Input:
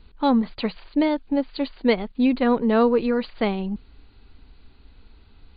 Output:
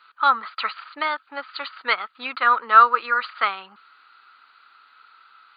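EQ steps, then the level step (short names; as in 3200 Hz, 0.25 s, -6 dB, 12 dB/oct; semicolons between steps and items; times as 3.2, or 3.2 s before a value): resonant high-pass 1300 Hz, resonance Q 12; +2.5 dB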